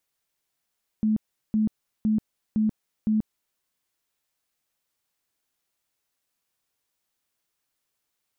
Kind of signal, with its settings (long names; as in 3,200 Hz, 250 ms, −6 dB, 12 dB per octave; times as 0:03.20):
tone bursts 216 Hz, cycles 29, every 0.51 s, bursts 5, −19 dBFS